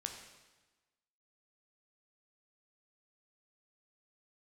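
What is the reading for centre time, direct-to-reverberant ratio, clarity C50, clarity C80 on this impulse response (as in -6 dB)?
32 ms, 3.0 dB, 6.0 dB, 7.5 dB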